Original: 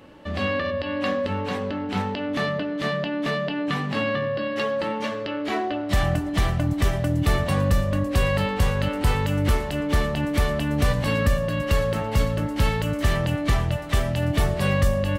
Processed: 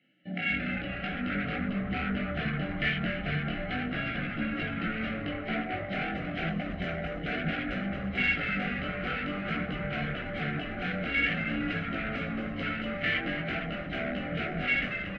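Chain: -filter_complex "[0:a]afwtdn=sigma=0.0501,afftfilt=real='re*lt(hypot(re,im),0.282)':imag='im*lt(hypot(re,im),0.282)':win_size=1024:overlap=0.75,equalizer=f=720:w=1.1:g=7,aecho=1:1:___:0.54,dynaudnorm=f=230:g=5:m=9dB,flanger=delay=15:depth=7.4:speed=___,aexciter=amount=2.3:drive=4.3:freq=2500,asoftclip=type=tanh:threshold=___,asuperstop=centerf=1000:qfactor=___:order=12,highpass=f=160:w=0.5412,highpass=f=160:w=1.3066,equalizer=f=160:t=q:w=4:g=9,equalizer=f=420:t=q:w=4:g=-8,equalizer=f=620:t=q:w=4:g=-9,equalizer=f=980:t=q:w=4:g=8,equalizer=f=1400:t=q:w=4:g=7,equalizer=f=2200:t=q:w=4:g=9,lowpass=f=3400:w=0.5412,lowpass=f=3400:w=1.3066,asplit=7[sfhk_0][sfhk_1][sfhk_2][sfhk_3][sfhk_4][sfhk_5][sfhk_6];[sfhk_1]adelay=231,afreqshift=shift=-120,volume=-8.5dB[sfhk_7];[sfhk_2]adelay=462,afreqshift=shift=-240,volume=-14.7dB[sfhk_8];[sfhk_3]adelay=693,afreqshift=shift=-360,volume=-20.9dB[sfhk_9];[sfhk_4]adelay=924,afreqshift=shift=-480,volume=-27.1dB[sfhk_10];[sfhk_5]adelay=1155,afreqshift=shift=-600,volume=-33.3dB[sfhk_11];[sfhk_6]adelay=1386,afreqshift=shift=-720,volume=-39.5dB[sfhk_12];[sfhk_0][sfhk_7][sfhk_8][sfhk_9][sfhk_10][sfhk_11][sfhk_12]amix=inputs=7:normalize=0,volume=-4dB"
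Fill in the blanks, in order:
1, 0.5, -20.5dB, 1.6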